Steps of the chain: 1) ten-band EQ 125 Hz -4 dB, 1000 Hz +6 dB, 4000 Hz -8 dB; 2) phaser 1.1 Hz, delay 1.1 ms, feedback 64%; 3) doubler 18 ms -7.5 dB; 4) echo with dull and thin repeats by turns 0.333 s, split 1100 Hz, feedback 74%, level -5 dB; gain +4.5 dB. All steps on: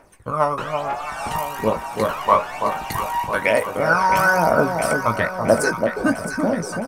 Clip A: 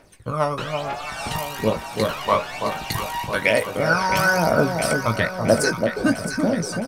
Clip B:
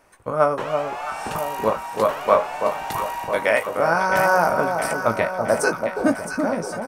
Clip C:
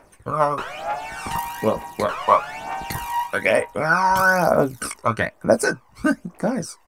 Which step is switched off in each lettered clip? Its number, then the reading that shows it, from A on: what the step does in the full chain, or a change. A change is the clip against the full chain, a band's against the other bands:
1, loudness change -1.5 LU; 2, 125 Hz band -3.0 dB; 4, momentary loudness spread change +2 LU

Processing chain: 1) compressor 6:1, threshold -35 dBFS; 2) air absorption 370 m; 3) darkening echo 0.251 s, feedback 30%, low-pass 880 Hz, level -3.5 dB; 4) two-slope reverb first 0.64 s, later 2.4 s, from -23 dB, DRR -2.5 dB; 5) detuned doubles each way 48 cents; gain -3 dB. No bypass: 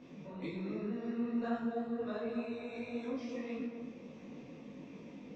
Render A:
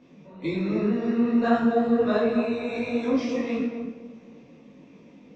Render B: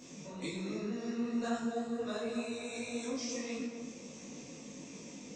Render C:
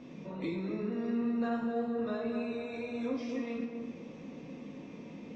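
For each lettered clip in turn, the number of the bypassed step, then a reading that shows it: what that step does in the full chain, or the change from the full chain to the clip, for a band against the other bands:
1, mean gain reduction 8.5 dB; 2, 4 kHz band +10.0 dB; 5, crest factor change -1.5 dB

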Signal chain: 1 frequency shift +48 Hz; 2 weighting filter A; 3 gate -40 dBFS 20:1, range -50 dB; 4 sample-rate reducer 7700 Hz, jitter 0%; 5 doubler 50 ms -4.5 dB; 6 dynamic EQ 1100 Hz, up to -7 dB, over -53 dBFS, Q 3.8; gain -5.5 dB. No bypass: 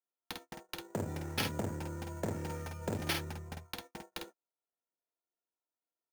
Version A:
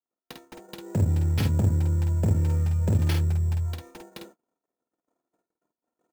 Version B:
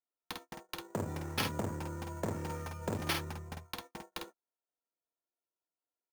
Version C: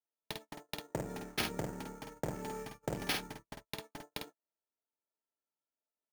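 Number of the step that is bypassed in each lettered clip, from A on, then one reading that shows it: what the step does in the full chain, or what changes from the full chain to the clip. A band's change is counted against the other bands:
2, 125 Hz band +18.0 dB; 6, 1 kHz band +2.5 dB; 1, 125 Hz band -5.5 dB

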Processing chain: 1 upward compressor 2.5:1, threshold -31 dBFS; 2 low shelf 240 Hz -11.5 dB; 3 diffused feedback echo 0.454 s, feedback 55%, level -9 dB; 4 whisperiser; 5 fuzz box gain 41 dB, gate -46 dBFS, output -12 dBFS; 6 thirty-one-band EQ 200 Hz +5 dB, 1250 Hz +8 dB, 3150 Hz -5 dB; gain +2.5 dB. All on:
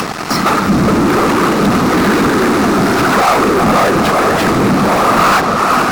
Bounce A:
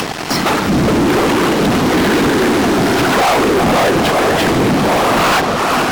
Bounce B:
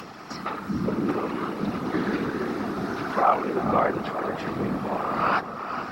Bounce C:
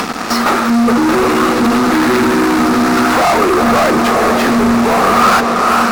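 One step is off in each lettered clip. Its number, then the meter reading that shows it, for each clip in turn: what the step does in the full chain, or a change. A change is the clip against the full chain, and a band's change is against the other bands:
6, 4 kHz band +3.5 dB; 5, distortion -3 dB; 4, 125 Hz band -7.5 dB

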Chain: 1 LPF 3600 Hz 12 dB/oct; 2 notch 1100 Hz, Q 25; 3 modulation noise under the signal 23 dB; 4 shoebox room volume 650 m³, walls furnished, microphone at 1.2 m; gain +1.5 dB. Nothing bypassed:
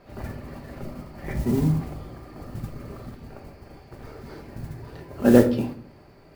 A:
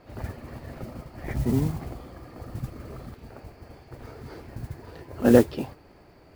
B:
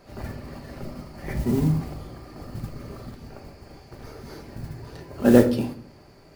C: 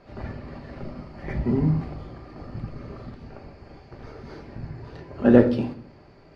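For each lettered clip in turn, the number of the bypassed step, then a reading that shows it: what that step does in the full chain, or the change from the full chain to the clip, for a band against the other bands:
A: 4, echo-to-direct -5.0 dB to none; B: 1, 4 kHz band +2.0 dB; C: 3, 4 kHz band -3.5 dB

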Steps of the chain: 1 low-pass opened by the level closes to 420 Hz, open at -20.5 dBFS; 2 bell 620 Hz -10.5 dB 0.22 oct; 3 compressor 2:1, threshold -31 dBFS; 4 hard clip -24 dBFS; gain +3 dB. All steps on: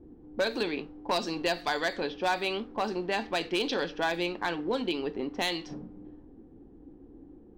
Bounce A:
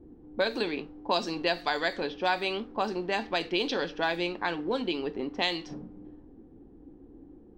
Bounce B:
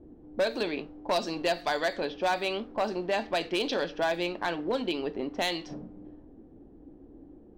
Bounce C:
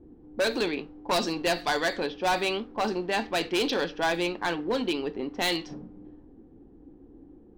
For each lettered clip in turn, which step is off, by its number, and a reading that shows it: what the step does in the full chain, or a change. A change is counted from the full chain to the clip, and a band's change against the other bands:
4, distortion -16 dB; 2, 500 Hz band +2.5 dB; 3, momentary loudness spread change -1 LU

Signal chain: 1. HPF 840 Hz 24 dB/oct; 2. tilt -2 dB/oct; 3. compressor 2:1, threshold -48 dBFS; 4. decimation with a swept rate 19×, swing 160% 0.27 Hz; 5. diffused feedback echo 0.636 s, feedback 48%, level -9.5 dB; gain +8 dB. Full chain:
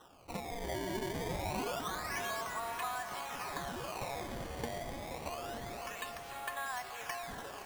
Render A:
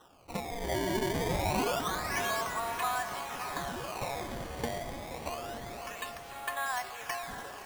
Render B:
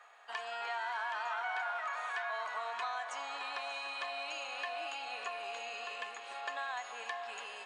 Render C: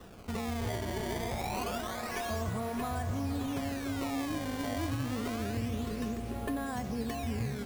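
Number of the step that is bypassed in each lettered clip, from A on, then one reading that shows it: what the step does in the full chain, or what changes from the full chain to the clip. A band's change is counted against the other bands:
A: 3, mean gain reduction 3.5 dB; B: 4, 250 Hz band -23.0 dB; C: 1, 250 Hz band +10.5 dB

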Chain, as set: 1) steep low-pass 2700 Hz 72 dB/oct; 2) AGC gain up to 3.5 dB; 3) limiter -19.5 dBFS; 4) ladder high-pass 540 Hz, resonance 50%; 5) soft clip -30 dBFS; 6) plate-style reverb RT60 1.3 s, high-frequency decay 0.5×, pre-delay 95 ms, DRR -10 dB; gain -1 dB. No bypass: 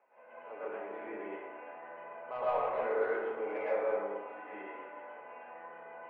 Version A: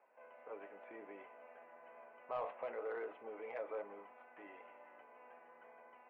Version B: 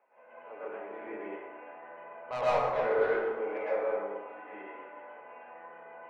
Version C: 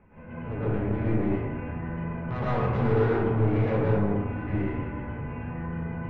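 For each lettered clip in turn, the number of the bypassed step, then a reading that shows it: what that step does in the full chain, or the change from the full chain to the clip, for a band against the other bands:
6, loudness change -11.0 LU; 3, momentary loudness spread change +4 LU; 4, 250 Hz band +16.0 dB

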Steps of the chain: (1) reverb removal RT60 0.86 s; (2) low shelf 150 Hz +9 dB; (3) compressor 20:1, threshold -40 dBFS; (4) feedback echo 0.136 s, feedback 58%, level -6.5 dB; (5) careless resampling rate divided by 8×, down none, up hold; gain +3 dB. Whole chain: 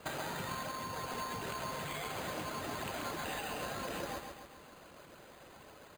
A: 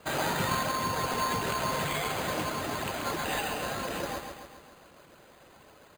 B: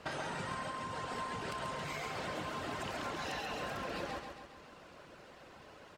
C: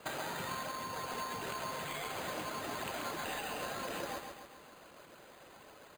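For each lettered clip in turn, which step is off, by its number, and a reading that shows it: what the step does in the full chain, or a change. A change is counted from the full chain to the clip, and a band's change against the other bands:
3, mean gain reduction 6.0 dB; 5, 8 kHz band -5.0 dB; 2, 125 Hz band -4.5 dB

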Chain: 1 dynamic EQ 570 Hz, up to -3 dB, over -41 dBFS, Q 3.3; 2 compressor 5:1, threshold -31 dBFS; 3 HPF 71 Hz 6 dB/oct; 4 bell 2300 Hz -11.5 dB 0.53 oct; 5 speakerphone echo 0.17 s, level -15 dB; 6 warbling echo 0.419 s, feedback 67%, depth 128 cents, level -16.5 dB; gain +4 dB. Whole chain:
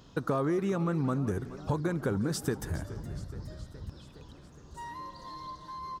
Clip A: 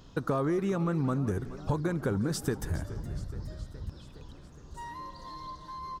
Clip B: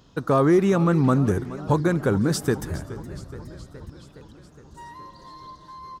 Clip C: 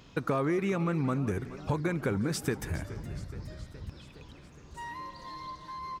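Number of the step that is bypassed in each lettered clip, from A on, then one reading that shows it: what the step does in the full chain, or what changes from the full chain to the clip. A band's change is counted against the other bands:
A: 3, momentary loudness spread change -1 LU; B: 2, mean gain reduction 3.5 dB; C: 4, 2 kHz band +3.5 dB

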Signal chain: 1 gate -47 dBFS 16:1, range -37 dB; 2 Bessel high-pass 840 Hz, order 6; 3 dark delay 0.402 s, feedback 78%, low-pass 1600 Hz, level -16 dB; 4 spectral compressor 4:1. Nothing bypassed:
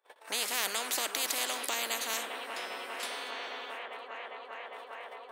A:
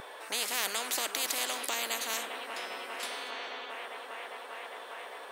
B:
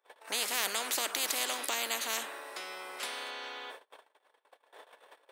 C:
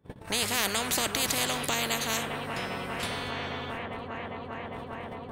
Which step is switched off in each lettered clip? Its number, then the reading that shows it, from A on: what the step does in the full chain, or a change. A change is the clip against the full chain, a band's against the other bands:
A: 1, momentary loudness spread change -1 LU; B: 3, momentary loudness spread change -2 LU; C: 2, 250 Hz band +10.5 dB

